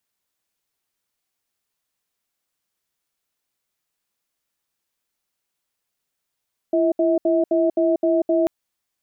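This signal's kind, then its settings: cadence 337 Hz, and 645 Hz, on 0.19 s, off 0.07 s, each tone -18 dBFS 1.74 s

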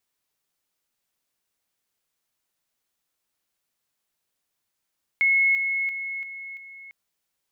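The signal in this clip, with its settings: level ladder 2.18 kHz -16.5 dBFS, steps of -6 dB, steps 5, 0.34 s 0.00 s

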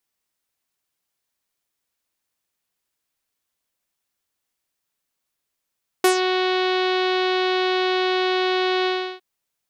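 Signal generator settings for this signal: synth note saw F#4 24 dB/octave, low-pass 3.9 kHz, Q 2.3, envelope 2 oct, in 0.17 s, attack 3.7 ms, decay 0.10 s, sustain -8 dB, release 0.34 s, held 2.82 s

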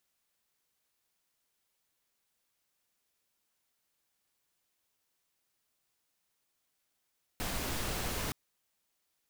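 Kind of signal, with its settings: noise pink, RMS -35.5 dBFS 0.92 s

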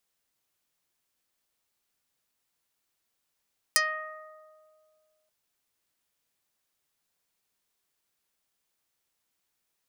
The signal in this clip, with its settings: plucked string D#5, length 1.53 s, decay 2.28 s, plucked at 0.17, dark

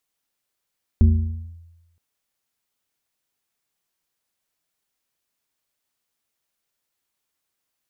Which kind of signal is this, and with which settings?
FM tone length 0.97 s, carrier 84.3 Hz, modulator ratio 1.68, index 0.73, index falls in 0.59 s linear, decay 1.05 s, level -8 dB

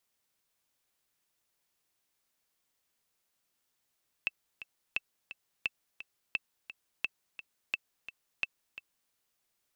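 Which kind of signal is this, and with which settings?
metronome 173 bpm, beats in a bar 2, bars 7, 2.65 kHz, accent 13.5 dB -16.5 dBFS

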